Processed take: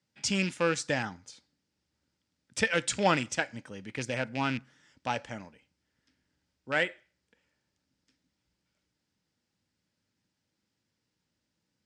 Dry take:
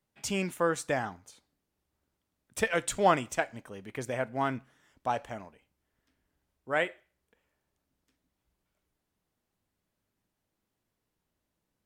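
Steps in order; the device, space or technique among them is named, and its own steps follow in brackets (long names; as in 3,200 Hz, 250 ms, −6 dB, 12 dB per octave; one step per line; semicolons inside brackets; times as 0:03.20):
car door speaker with a rattle (loose part that buzzes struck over −40 dBFS, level −29 dBFS; loudspeaker in its box 89–8,000 Hz, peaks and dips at 400 Hz −7 dB, 690 Hz −10 dB, 1,100 Hz −8 dB, 5,000 Hz +7 dB)
level +3.5 dB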